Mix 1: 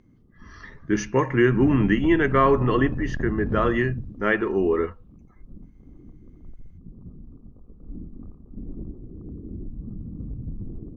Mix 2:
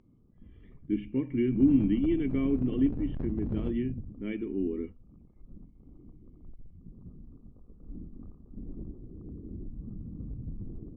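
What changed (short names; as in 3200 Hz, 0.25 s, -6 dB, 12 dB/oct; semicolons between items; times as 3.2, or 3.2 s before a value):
speech: add vocal tract filter i; background -5.5 dB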